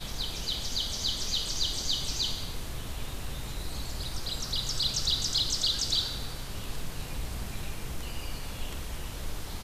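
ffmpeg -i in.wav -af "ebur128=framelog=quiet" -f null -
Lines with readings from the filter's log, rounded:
Integrated loudness:
  I:         -31.5 LUFS
  Threshold: -41.5 LUFS
Loudness range:
  LRA:         8.6 LU
  Threshold: -51.1 LUFS
  LRA low:   -37.6 LUFS
  LRA high:  -29.1 LUFS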